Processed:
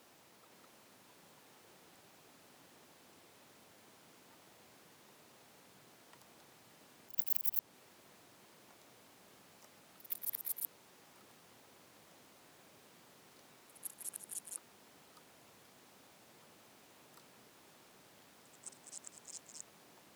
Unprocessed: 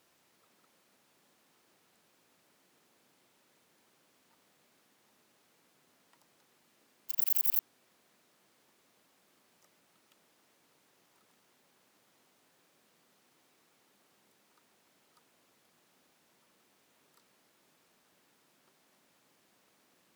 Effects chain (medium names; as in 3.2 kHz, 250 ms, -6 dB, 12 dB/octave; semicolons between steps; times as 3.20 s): slow attack 286 ms; ever faster or slower copies 519 ms, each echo -5 st, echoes 3, each echo -6 dB; band noise 98–980 Hz -76 dBFS; trim +5.5 dB